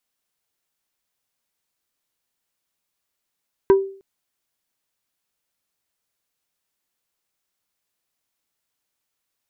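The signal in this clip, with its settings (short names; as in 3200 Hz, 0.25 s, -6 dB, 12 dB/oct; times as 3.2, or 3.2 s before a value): wood hit plate, length 0.31 s, lowest mode 389 Hz, decay 0.45 s, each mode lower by 9.5 dB, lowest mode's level -7 dB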